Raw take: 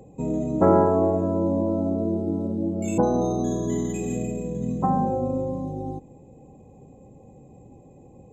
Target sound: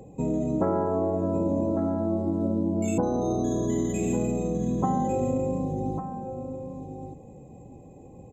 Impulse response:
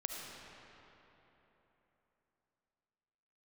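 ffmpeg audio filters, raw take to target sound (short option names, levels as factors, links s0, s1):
-af "acompressor=threshold=0.0631:ratio=5,aecho=1:1:1150:0.355,volume=1.19"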